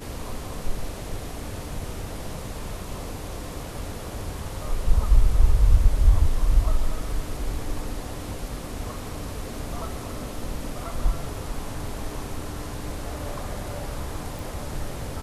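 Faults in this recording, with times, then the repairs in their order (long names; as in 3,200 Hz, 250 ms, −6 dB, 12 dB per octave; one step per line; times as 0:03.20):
0:14.39: click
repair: click removal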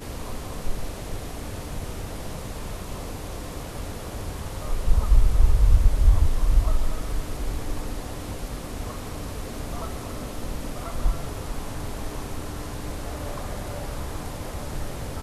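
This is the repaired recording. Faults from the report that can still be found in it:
none of them is left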